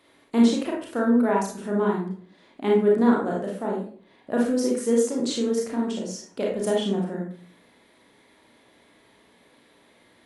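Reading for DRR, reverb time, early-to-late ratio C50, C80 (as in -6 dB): -2.5 dB, 0.50 s, 3.0 dB, 8.0 dB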